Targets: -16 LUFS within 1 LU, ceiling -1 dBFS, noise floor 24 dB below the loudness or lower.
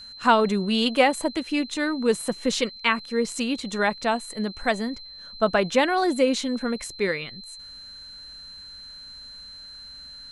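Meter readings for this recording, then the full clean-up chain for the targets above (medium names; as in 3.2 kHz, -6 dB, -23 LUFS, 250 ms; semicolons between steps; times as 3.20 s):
steady tone 4.1 kHz; tone level -40 dBFS; loudness -24.0 LUFS; peak level -5.5 dBFS; loudness target -16.0 LUFS
-> band-stop 4.1 kHz, Q 30; trim +8 dB; peak limiter -1 dBFS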